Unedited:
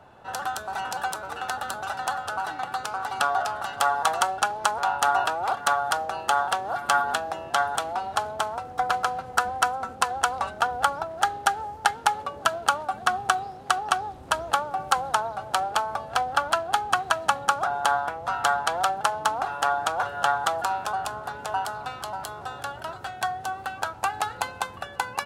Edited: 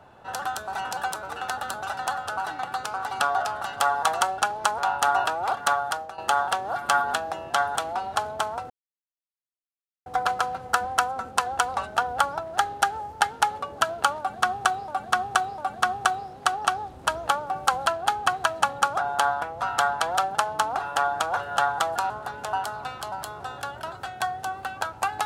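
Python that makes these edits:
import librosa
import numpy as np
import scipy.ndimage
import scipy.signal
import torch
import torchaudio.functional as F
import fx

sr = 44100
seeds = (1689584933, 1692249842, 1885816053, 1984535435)

y = fx.edit(x, sr, fx.fade_out_to(start_s=5.74, length_s=0.44, floor_db=-12.0),
    fx.insert_silence(at_s=8.7, length_s=1.36),
    fx.repeat(start_s=12.82, length_s=0.7, count=3),
    fx.cut(start_s=15.1, length_s=1.42),
    fx.cut(start_s=20.76, length_s=0.35), tone=tone)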